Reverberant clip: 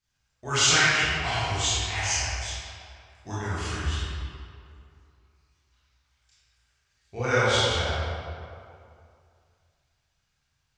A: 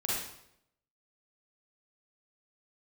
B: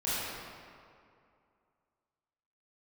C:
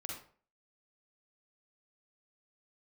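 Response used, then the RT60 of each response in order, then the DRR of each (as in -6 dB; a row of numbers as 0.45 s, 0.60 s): B; 0.75 s, 2.4 s, 0.45 s; -6.5 dB, -11.5 dB, -2.0 dB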